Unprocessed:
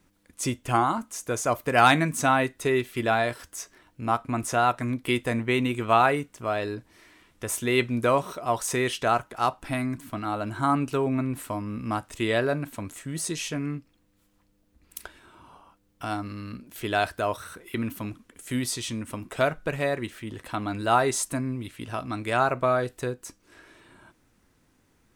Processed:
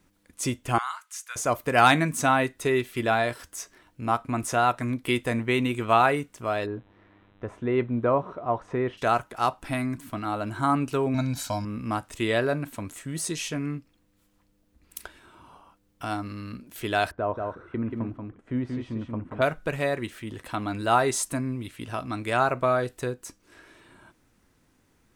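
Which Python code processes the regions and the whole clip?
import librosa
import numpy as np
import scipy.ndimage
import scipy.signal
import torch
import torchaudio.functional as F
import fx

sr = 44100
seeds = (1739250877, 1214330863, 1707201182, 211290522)

y = fx.chain(x, sr, fx.highpass(hz=1300.0, slope=24),
    fx.high_shelf(hz=8600.0, db=-4.5), at=(0.78, 1.36))
y = fx.lowpass(y, sr, hz=1200.0, slope=12, at=(6.65, 8.97), fade=0.02)
y = fx.dmg_buzz(y, sr, base_hz=100.0, harmonics=40, level_db=-61.0, tilt_db=-5, odd_only=False, at=(6.65, 8.97), fade=0.02)
y = fx.chain(y, sr, fx.band_shelf(hz=5100.0, db=14.5, octaves=1.1),
    fx.comb(ms=1.3, depth=0.74), at=(11.14, 11.65))
y = fx.chain(y, sr, fx.lowpass(hz=1100.0, slope=12),
    fx.echo_single(ms=183, db=-4.0), at=(17.11, 19.42))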